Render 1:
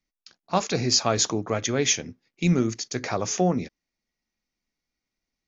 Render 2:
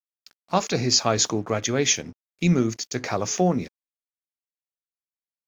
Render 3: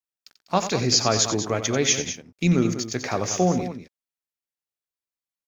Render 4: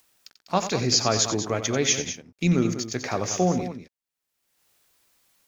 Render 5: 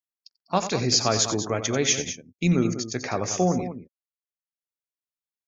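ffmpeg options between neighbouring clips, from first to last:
ffmpeg -i in.wav -af "aeval=exprs='sgn(val(0))*max(abs(val(0))-0.00224,0)':channel_layout=same,volume=1.5dB" out.wav
ffmpeg -i in.wav -af "aecho=1:1:90.38|198.3:0.282|0.282" out.wav
ffmpeg -i in.wav -af "acompressor=mode=upward:threshold=-40dB:ratio=2.5,volume=-1.5dB" out.wav
ffmpeg -i in.wav -af "afftdn=noise_reduction=35:noise_floor=-45" out.wav

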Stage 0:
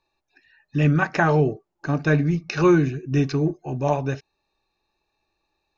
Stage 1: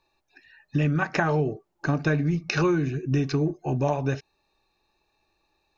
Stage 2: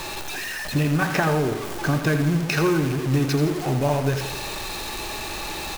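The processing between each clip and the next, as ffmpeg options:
ffmpeg -i in.wav -af "acompressor=threshold=-24dB:ratio=6,volume=3.5dB" out.wav
ffmpeg -i in.wav -af "aeval=exprs='val(0)+0.5*0.0531*sgn(val(0))':channel_layout=same,aecho=1:1:83|166|249|332|415|498:0.355|0.188|0.0997|0.0528|0.028|0.0148,acrusher=bits=5:mode=log:mix=0:aa=0.000001" out.wav

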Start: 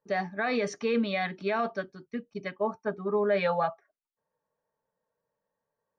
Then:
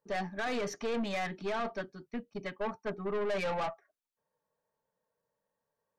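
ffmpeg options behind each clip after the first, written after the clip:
ffmpeg -i in.wav -af "aeval=exprs='(tanh(31.6*val(0)+0.35)-tanh(0.35))/31.6':channel_layout=same" out.wav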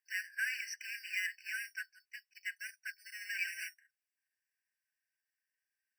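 ffmpeg -i in.wav -filter_complex "[0:a]asplit=2[link_01][link_02];[link_02]acrusher=samples=9:mix=1:aa=0.000001,volume=-4.5dB[link_03];[link_01][link_03]amix=inputs=2:normalize=0,afftfilt=real='re*eq(mod(floor(b*sr/1024/1500),2),1)':imag='im*eq(mod(floor(b*sr/1024/1500),2),1)':win_size=1024:overlap=0.75,volume=1.5dB" out.wav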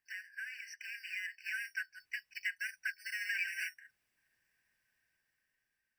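ffmpeg -i in.wav -af "acompressor=threshold=-51dB:ratio=3,bass=frequency=250:gain=8,treble=frequency=4000:gain=-7,dynaudnorm=framelen=560:gausssize=5:maxgain=9dB,volume=5dB" out.wav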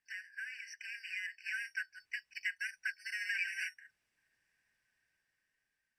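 ffmpeg -i in.wav -af "lowpass=9600" out.wav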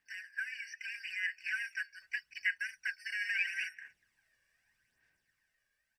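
ffmpeg -i in.wav -filter_complex "[0:a]asplit=2[link_01][link_02];[link_02]adelay=240,highpass=300,lowpass=3400,asoftclip=type=hard:threshold=-34dB,volume=-24dB[link_03];[link_01][link_03]amix=inputs=2:normalize=0,aphaser=in_gain=1:out_gain=1:delay=1.8:decay=0.5:speed=0.79:type=sinusoidal,acrossover=split=4300[link_04][link_05];[link_05]acompressor=threshold=-57dB:ratio=4:attack=1:release=60[link_06];[link_04][link_06]amix=inputs=2:normalize=0,volume=2dB" out.wav

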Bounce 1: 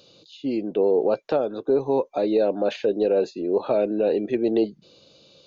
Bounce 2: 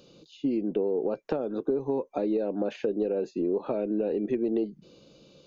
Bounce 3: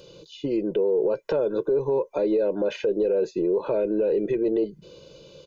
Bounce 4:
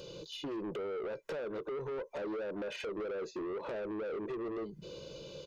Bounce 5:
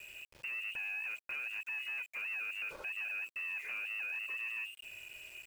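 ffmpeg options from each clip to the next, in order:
ffmpeg -i in.wav -af "lowshelf=frequency=400:gain=10.5,acompressor=threshold=-21dB:ratio=6,equalizer=frequency=100:width_type=o:width=0.67:gain=-12,equalizer=frequency=630:width_type=o:width=0.67:gain=-4,equalizer=frequency=4000:width_type=o:width=0.67:gain=-7,volume=-2dB" out.wav
ffmpeg -i in.wav -af "aecho=1:1:2:0.76,alimiter=limit=-21.5dB:level=0:latency=1:release=16,volume=5.5dB" out.wav
ffmpeg -i in.wav -af "acompressor=threshold=-30dB:ratio=6,asoftclip=type=tanh:threshold=-36.5dB,volume=1dB" out.wav
ffmpeg -i in.wav -af "aeval=exprs='val(0)+0.001*sin(2*PI*500*n/s)':channel_layout=same,lowpass=frequency=2600:width_type=q:width=0.5098,lowpass=frequency=2600:width_type=q:width=0.6013,lowpass=frequency=2600:width_type=q:width=0.9,lowpass=frequency=2600:width_type=q:width=2.563,afreqshift=-3000,aeval=exprs='val(0)*gte(abs(val(0)),0.00316)':channel_layout=same,volume=-2dB" out.wav

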